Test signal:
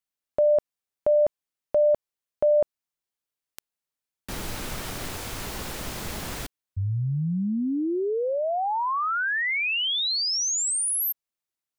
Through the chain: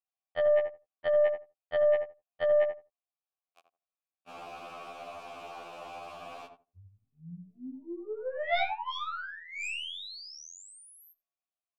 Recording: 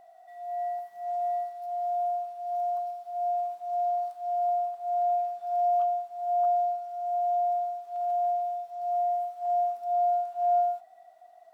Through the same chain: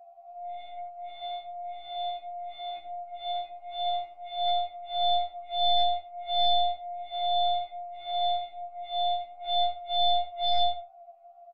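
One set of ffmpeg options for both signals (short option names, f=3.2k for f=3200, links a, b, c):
-filter_complex "[0:a]asplit=3[a][b][c];[a]bandpass=f=730:t=q:w=8,volume=0dB[d];[b]bandpass=f=1.09k:t=q:w=8,volume=-6dB[e];[c]bandpass=f=2.44k:t=q:w=8,volume=-9dB[f];[d][e][f]amix=inputs=3:normalize=0,aeval=exprs='0.106*(cos(1*acos(clip(val(0)/0.106,-1,1)))-cos(1*PI/2))+0.0376*(cos(2*acos(clip(val(0)/0.106,-1,1)))-cos(2*PI/2))+0.0473*(cos(7*acos(clip(val(0)/0.106,-1,1)))-cos(7*PI/2))+0.00531*(cos(8*acos(clip(val(0)/0.106,-1,1)))-cos(8*PI/2))':c=same,asplit=2[g][h];[h]adelay=82,lowpass=f=900:p=1,volume=-4dB,asplit=2[i][j];[j]adelay=82,lowpass=f=900:p=1,volume=0.17,asplit=2[k][l];[l]adelay=82,lowpass=f=900:p=1,volume=0.17[m];[g][i][k][m]amix=inputs=4:normalize=0,afftfilt=real='re*2*eq(mod(b,4),0)':imag='im*2*eq(mod(b,4),0)':win_size=2048:overlap=0.75"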